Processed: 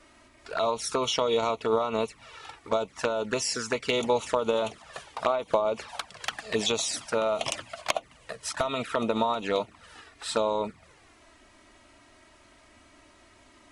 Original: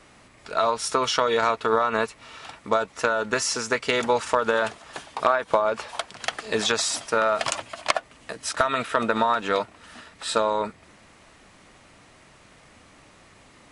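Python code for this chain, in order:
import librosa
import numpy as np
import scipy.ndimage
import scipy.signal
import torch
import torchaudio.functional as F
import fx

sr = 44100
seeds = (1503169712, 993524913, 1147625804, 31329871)

y = fx.env_flanger(x, sr, rest_ms=3.4, full_db=-20.5)
y = y * librosa.db_to_amplitude(-1.0)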